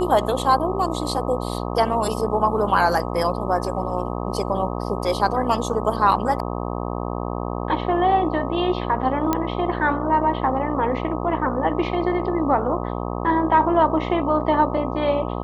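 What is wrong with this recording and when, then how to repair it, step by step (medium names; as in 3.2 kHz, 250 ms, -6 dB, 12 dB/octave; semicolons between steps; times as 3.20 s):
buzz 60 Hz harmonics 21 -27 dBFS
9.33 s: pop -7 dBFS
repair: de-click; de-hum 60 Hz, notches 21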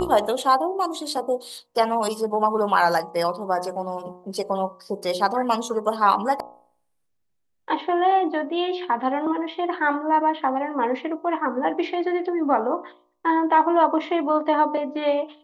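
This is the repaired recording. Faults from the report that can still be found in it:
nothing left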